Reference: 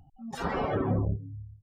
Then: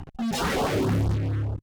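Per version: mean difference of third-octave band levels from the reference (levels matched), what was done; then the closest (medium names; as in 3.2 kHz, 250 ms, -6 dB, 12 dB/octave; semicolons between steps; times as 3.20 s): 11.5 dB: low-pass 7.4 kHz; in parallel at -9 dB: fuzz box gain 53 dB, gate -54 dBFS; on the sum: LFO notch saw up 4.5 Hz 490–2600 Hz; trim -3.5 dB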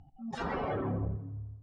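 3.0 dB: distance through air 100 m; peak limiter -25.5 dBFS, peak gain reduction 8.5 dB; on a send: tape echo 85 ms, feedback 65%, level -12.5 dB, low-pass 3.9 kHz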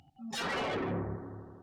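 8.0 dB: frequency weighting D; saturation -30.5 dBFS, distortion -11 dB; bucket-brigade echo 80 ms, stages 1024, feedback 80%, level -11 dB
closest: second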